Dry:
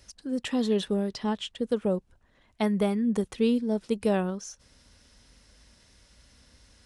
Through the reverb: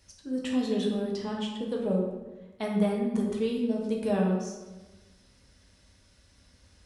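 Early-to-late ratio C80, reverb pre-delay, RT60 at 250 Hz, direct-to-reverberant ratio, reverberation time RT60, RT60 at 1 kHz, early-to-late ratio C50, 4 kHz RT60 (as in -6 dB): 5.5 dB, 5 ms, 1.4 s, -2.0 dB, 1.2 s, 1.1 s, 2.5 dB, 0.75 s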